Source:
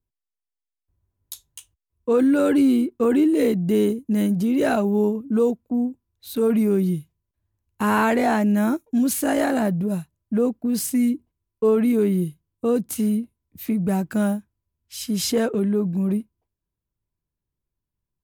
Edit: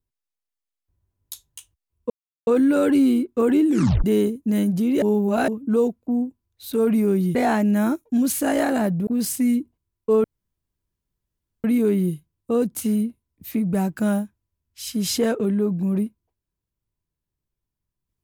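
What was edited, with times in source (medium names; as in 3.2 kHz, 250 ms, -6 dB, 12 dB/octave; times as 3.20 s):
2.10 s: insert silence 0.37 s
3.30 s: tape stop 0.37 s
4.65–5.11 s: reverse
6.98–8.16 s: delete
9.88–10.61 s: delete
11.78 s: insert room tone 1.40 s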